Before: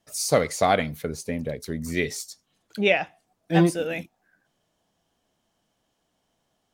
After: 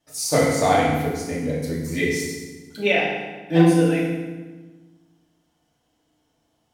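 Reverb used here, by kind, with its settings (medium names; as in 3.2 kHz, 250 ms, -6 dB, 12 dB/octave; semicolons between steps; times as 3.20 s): FDN reverb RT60 1.3 s, low-frequency decay 1.4×, high-frequency decay 0.8×, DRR -5.5 dB; trim -3.5 dB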